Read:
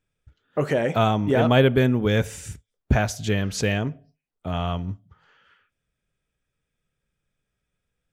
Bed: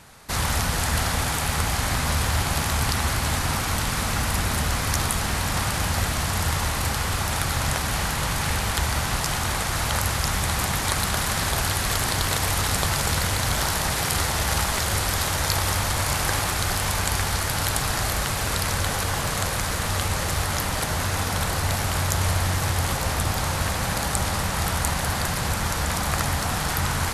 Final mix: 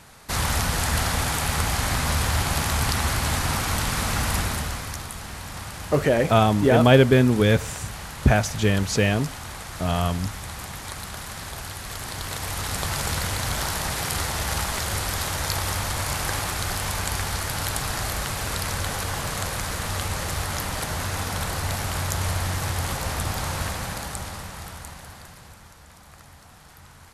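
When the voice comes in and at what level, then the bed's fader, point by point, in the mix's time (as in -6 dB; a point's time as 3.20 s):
5.35 s, +2.5 dB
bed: 4.37 s 0 dB
5.04 s -11 dB
11.83 s -11 dB
13.00 s -3 dB
23.62 s -3 dB
25.79 s -24 dB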